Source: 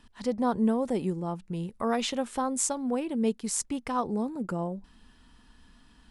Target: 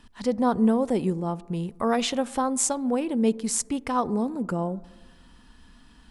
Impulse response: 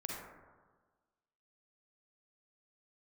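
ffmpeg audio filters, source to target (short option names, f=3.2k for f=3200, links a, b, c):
-filter_complex "[0:a]asplit=2[a][b];[1:a]atrim=start_sample=2205,highshelf=f=2k:g=-12[c];[b][c]afir=irnorm=-1:irlink=0,volume=-17.5dB[d];[a][d]amix=inputs=2:normalize=0,volume=3.5dB"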